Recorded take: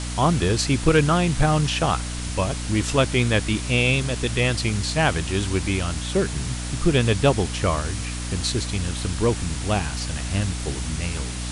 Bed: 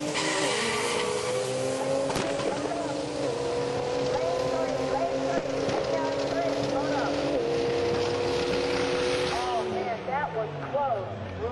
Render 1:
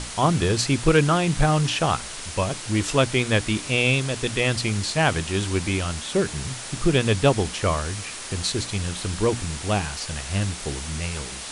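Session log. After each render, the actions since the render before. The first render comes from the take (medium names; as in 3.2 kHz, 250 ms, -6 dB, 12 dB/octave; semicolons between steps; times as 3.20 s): hum notches 60/120/180/240/300 Hz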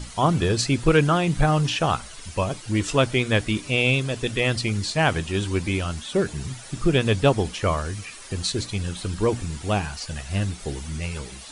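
noise reduction 11 dB, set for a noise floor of -35 dBFS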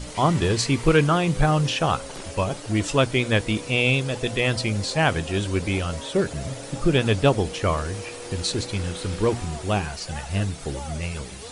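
add bed -11 dB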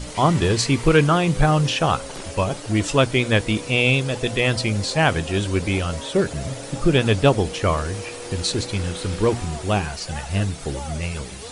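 trim +2.5 dB; peak limiter -3 dBFS, peak gain reduction 1.5 dB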